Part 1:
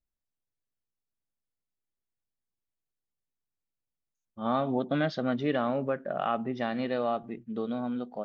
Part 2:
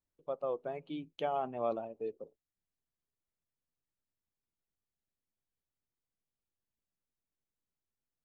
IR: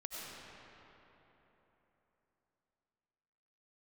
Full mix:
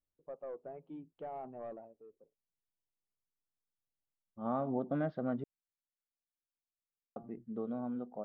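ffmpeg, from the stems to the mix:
-filter_complex "[0:a]volume=0.501,asplit=3[s0][s1][s2];[s0]atrim=end=5.44,asetpts=PTS-STARTPTS,afade=t=out:st=5.436:d=0.004:c=hsin[s3];[s1]atrim=start=5.44:end=7.16,asetpts=PTS-STARTPTS,volume=0[s4];[s2]atrim=start=7.16,asetpts=PTS-STARTPTS,afade=t=in:d=0.004:c=hsin[s5];[s3][s4][s5]concat=n=3:v=0:a=1[s6];[1:a]asoftclip=type=tanh:threshold=0.0266,volume=0.531,afade=t=out:st=1.6:d=0.42:silence=0.281838[s7];[s6][s7]amix=inputs=2:normalize=0,lowpass=1100"

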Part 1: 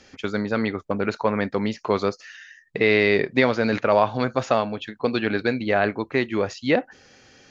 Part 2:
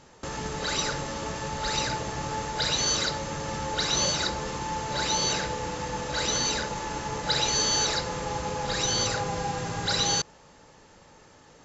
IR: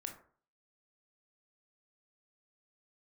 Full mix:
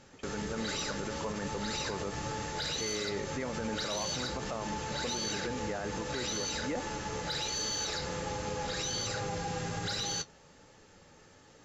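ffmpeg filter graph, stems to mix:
-filter_complex "[0:a]lowpass=1900,volume=0.282[s0];[1:a]equalizer=f=980:t=o:w=0.29:g=-7.5,flanger=delay=9:depth=3.8:regen=-41:speed=1.3:shape=triangular,volume=1.06[s1];[s0][s1]amix=inputs=2:normalize=0,equalizer=f=670:t=o:w=0.25:g=-3,asoftclip=type=tanh:threshold=0.141,alimiter=level_in=1.33:limit=0.0631:level=0:latency=1:release=47,volume=0.75"

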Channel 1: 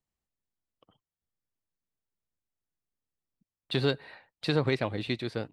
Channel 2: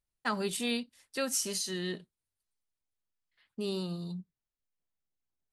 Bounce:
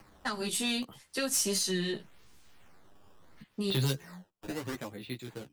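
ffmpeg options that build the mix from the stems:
-filter_complex "[0:a]equalizer=f=640:t=o:w=0.44:g=-4.5,acrusher=samples=12:mix=1:aa=0.000001:lfo=1:lforange=19.2:lforate=0.74,acompressor=mode=upward:threshold=0.0126:ratio=2.5,volume=0.944,afade=t=out:st=3.88:d=0.32:silence=0.281838,asplit=2[s0][s1];[1:a]volume=1.33[s2];[s1]apad=whole_len=243621[s3];[s2][s3]sidechaincompress=threshold=0.00316:ratio=8:attack=28:release=390[s4];[s0][s4]amix=inputs=2:normalize=0,acrossover=split=170|3000[s5][s6][s7];[s6]acompressor=threshold=0.0224:ratio=6[s8];[s5][s8][s7]amix=inputs=3:normalize=0,aeval=exprs='0.168*(cos(1*acos(clip(val(0)/0.168,-1,1)))-cos(1*PI/2))+0.0335*(cos(5*acos(clip(val(0)/0.168,-1,1)))-cos(5*PI/2))':c=same,flanger=delay=9.8:depth=5.9:regen=1:speed=0.67:shape=sinusoidal"

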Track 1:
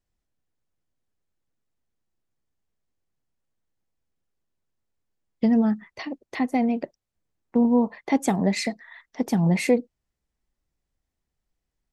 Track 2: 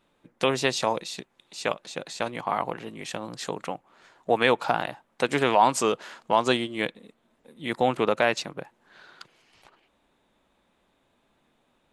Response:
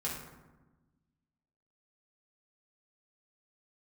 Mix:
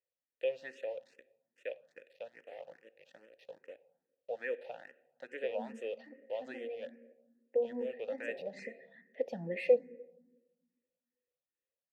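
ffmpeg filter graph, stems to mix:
-filter_complex "[0:a]volume=1.26,asplit=2[s0][s1];[s1]volume=0.141[s2];[1:a]aeval=exprs='val(0)*gte(abs(val(0)),0.0237)':c=same,volume=0.473,asplit=3[s3][s4][s5];[s4]volume=0.141[s6];[s5]apad=whole_len=525910[s7];[s0][s7]sidechaincompress=threshold=0.0251:ratio=8:attack=22:release=927[s8];[2:a]atrim=start_sample=2205[s9];[s2][s6]amix=inputs=2:normalize=0[s10];[s10][s9]afir=irnorm=-1:irlink=0[s11];[s8][s3][s11]amix=inputs=3:normalize=0,asplit=3[s12][s13][s14];[s12]bandpass=f=530:t=q:w=8,volume=1[s15];[s13]bandpass=f=1840:t=q:w=8,volume=0.501[s16];[s14]bandpass=f=2480:t=q:w=8,volume=0.355[s17];[s15][s16][s17]amix=inputs=3:normalize=0,asplit=2[s18][s19];[s19]afreqshift=2.4[s20];[s18][s20]amix=inputs=2:normalize=1"

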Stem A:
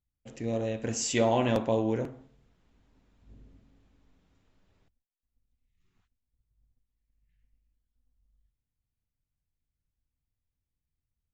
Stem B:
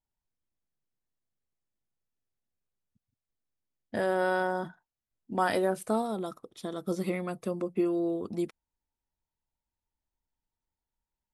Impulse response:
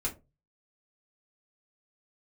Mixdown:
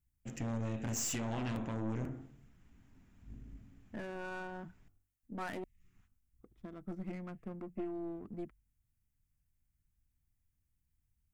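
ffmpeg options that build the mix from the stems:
-filter_complex "[0:a]bandreject=f=48.57:t=h:w=4,bandreject=f=97.14:t=h:w=4,bandreject=f=145.71:t=h:w=4,bandreject=f=194.28:t=h:w=4,bandreject=f=242.85:t=h:w=4,bandreject=f=291.42:t=h:w=4,bandreject=f=339.99:t=h:w=4,bandreject=f=388.56:t=h:w=4,bandreject=f=437.13:t=h:w=4,bandreject=f=485.7:t=h:w=4,bandreject=f=534.27:t=h:w=4,bandreject=f=582.84:t=h:w=4,bandreject=f=631.41:t=h:w=4,bandreject=f=679.98:t=h:w=4,bandreject=f=728.55:t=h:w=4,bandreject=f=777.12:t=h:w=4,bandreject=f=825.69:t=h:w=4,bandreject=f=874.26:t=h:w=4,bandreject=f=922.83:t=h:w=4,bandreject=f=971.4:t=h:w=4,bandreject=f=1019.97:t=h:w=4,bandreject=f=1068.54:t=h:w=4,bandreject=f=1117.11:t=h:w=4,bandreject=f=1165.68:t=h:w=4,bandreject=f=1214.25:t=h:w=4,bandreject=f=1262.82:t=h:w=4,bandreject=f=1311.39:t=h:w=4,bandreject=f=1359.96:t=h:w=4,bandreject=f=1408.53:t=h:w=4,bandreject=f=1457.1:t=h:w=4,bandreject=f=1505.67:t=h:w=4,alimiter=limit=0.0944:level=0:latency=1:release=437,acompressor=threshold=0.0158:ratio=2,volume=0.891[s0];[1:a]adynamicsmooth=sensitivity=5.5:basefreq=1100,volume=0.224,asplit=3[s1][s2][s3];[s1]atrim=end=5.64,asetpts=PTS-STARTPTS,afade=t=out:st=5.636:d=0.004:c=hsin[s4];[s2]atrim=start=5.64:end=6.41,asetpts=PTS-STARTPTS,volume=0[s5];[s3]atrim=start=6.41,asetpts=PTS-STARTPTS,afade=t=in:d=0.004:c=hsin[s6];[s4][s5][s6]concat=n=3:v=0:a=1[s7];[s0][s7]amix=inputs=2:normalize=0,equalizer=f=500:t=o:w=1:g=-12,equalizer=f=1000:t=o:w=1:g=-5,equalizer=f=4000:t=o:w=1:g=-12,aeval=exprs='0.0335*(cos(1*acos(clip(val(0)/0.0335,-1,1)))-cos(1*PI/2))+0.00944*(cos(5*acos(clip(val(0)/0.0335,-1,1)))-cos(5*PI/2))+0.00473*(cos(8*acos(clip(val(0)/0.0335,-1,1)))-cos(8*PI/2))':c=same"

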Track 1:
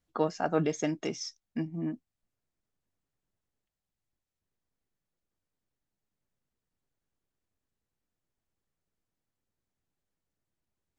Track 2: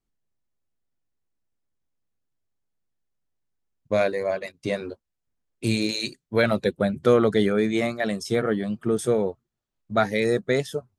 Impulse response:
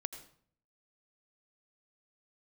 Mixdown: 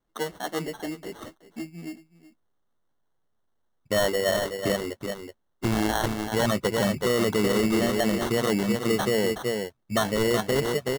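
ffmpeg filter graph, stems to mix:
-filter_complex "[0:a]highpass=180,asplit=2[s0][s1];[s1]adelay=7.8,afreqshift=2.7[s2];[s0][s2]amix=inputs=2:normalize=1,volume=1.06,asplit=2[s3][s4];[s4]volume=0.141[s5];[1:a]highshelf=f=5900:g=8,volume=1.26,asplit=2[s6][s7];[s7]volume=0.398[s8];[s5][s8]amix=inputs=2:normalize=0,aecho=0:1:374:1[s9];[s3][s6][s9]amix=inputs=3:normalize=0,acrusher=samples=18:mix=1:aa=0.000001,alimiter=limit=0.168:level=0:latency=1:release=45"

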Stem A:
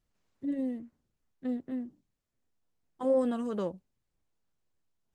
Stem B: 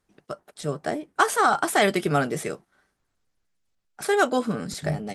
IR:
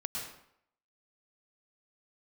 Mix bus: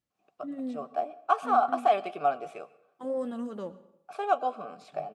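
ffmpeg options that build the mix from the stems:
-filter_complex "[0:a]flanger=delay=3.5:depth=5:regen=73:speed=0.55:shape=sinusoidal,volume=0.841,asplit=2[s0][s1];[s1]volume=0.168[s2];[1:a]asplit=3[s3][s4][s5];[s3]bandpass=f=730:t=q:w=8,volume=1[s6];[s4]bandpass=f=1090:t=q:w=8,volume=0.501[s7];[s5]bandpass=f=2440:t=q:w=8,volume=0.355[s8];[s6][s7][s8]amix=inputs=3:normalize=0,adelay=100,volume=1.33,asplit=2[s9][s10];[s10]volume=0.126[s11];[2:a]atrim=start_sample=2205[s12];[s2][s11]amix=inputs=2:normalize=0[s13];[s13][s12]afir=irnorm=-1:irlink=0[s14];[s0][s9][s14]amix=inputs=3:normalize=0,highpass=100"

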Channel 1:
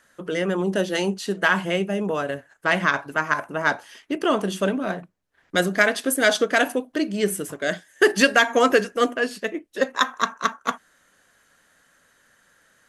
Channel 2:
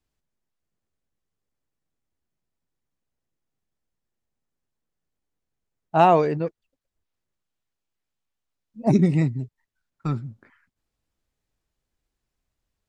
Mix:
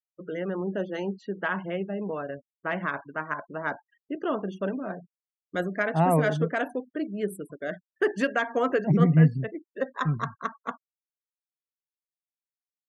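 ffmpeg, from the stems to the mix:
-filter_complex "[0:a]highshelf=f=8800:g=-6,volume=0.473,asplit=2[s0][s1];[1:a]equalizer=f=160:t=o:w=0.33:g=12,equalizer=f=2000:t=o:w=0.33:g=9,equalizer=f=5000:t=o:w=0.33:g=4,volume=1.06[s2];[s1]apad=whole_len=568042[s3];[s2][s3]sidechaincompress=threshold=0.0355:ratio=12:attack=28:release=912[s4];[s0][s4]amix=inputs=2:normalize=0,afftfilt=real='re*gte(hypot(re,im),0.0126)':imag='im*gte(hypot(re,im),0.0126)':win_size=1024:overlap=0.75,equalizer=f=4900:w=0.68:g=-14.5"

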